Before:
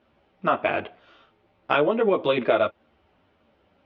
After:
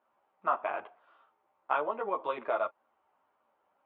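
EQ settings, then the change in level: band-pass 1000 Hz, Q 2.5; -2.0 dB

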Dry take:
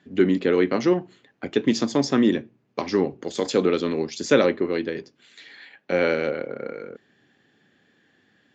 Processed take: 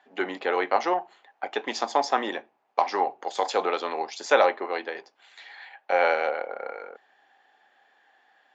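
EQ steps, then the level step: resonant high-pass 790 Hz, resonance Q 4.9; high shelf 4700 Hz -7.5 dB; 0.0 dB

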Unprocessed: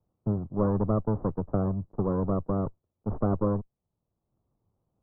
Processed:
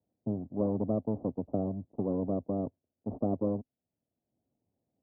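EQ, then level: HPF 71 Hz; ladder low-pass 790 Hz, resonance 50%; bell 260 Hz +11.5 dB 0.56 oct; 0.0 dB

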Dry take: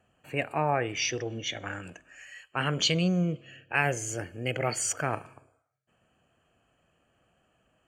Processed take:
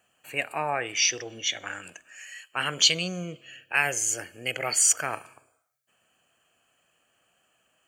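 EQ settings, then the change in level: tilt +3.5 dB/oct; 0.0 dB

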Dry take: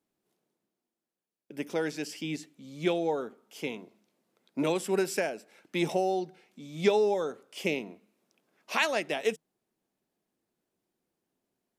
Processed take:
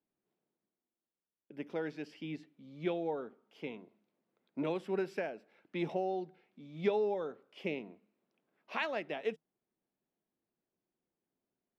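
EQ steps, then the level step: air absorption 350 m; high shelf 6300 Hz +9 dB; -6.0 dB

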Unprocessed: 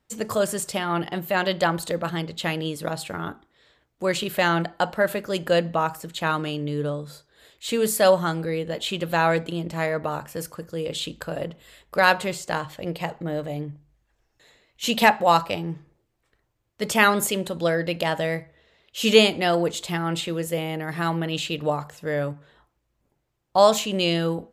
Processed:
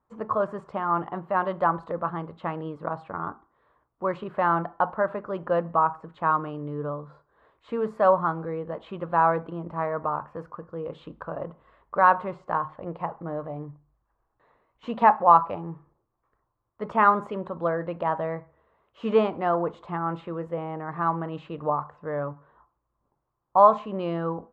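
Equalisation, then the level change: synth low-pass 1100 Hz, resonance Q 4.5; -6.0 dB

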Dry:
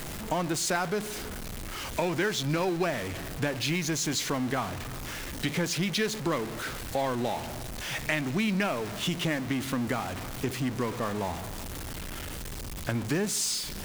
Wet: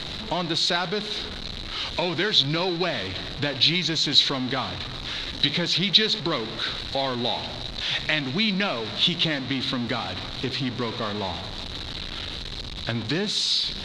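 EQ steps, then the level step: synth low-pass 3900 Hz, resonance Q 8.4; +1.5 dB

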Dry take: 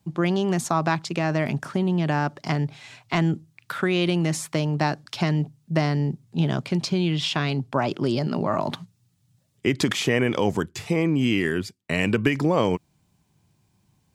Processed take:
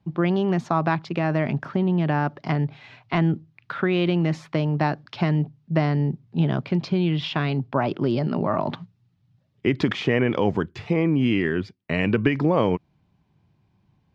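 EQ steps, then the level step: air absorption 260 m; +1.5 dB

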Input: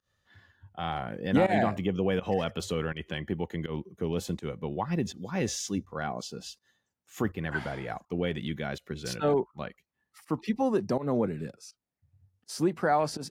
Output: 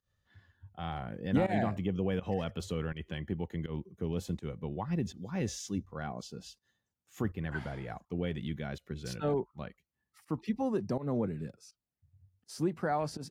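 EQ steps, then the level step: low shelf 180 Hz +10 dB; -7.5 dB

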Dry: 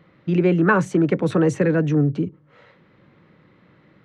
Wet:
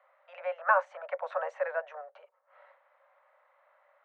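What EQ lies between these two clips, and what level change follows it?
steep high-pass 560 Hz 96 dB/oct; Bessel low-pass 970 Hz, order 2; 0.0 dB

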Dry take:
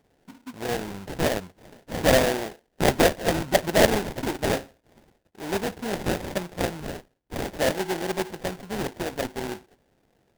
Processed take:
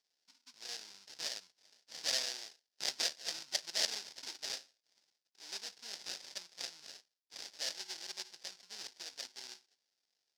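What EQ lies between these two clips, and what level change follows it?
band-pass 5100 Hz, Q 3.5; +1.0 dB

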